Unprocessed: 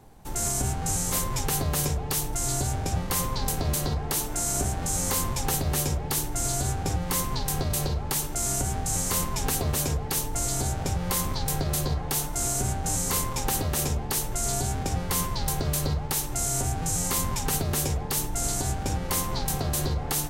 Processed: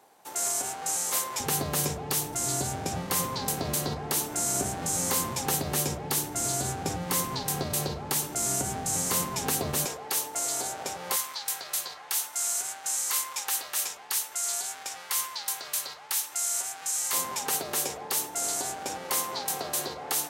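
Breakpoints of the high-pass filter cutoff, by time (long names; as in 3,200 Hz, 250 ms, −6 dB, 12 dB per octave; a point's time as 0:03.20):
530 Hz
from 0:01.40 160 Hz
from 0:09.85 480 Hz
from 0:11.16 1,200 Hz
from 0:17.13 430 Hz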